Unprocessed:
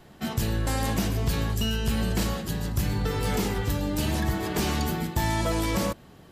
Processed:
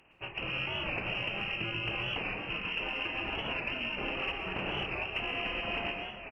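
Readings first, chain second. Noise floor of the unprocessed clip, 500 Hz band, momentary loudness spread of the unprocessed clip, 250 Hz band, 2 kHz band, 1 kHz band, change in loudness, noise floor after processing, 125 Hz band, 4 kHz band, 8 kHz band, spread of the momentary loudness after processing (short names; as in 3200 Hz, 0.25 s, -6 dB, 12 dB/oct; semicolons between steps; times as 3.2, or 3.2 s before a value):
-51 dBFS, -8.5 dB, 3 LU, -14.5 dB, +2.5 dB, -7.0 dB, -6.5 dB, -46 dBFS, -17.5 dB, -1.5 dB, under -35 dB, 2 LU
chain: spectral limiter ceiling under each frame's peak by 24 dB; reverb removal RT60 1.1 s; band shelf 1100 Hz -9 dB; echo 0.498 s -19.5 dB; AGC gain up to 14 dB; HPF 100 Hz; inverted band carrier 3000 Hz; added harmonics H 6 -39 dB, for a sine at -7 dBFS; compressor, threshold -27 dBFS, peak gain reduction 10.5 dB; plate-style reverb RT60 1.1 s, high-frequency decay 0.85×, pre-delay 0.105 s, DRR 2.5 dB; record warp 45 rpm, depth 100 cents; gain -6.5 dB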